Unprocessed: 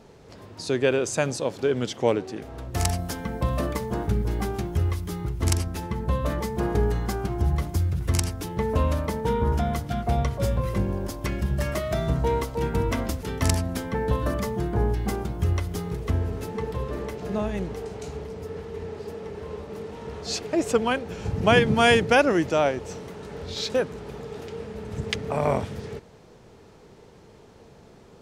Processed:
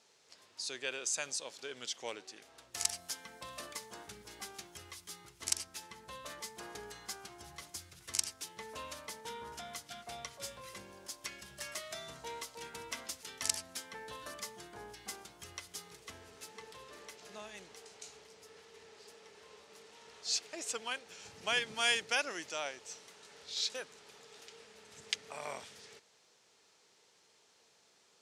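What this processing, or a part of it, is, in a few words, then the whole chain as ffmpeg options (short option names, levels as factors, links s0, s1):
piezo pickup straight into a mixer: -af "lowpass=7400,aderivative,volume=1.12"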